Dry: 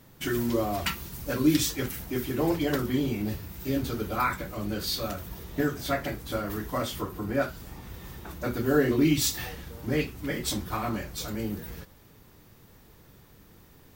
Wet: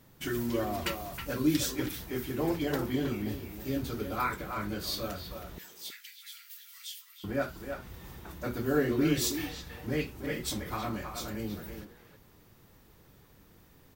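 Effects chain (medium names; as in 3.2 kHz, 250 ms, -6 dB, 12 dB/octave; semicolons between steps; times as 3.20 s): 5.58–7.24 s: inverse Chebyshev high-pass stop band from 440 Hz, stop band 80 dB; speakerphone echo 320 ms, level -6 dB; trim -4.5 dB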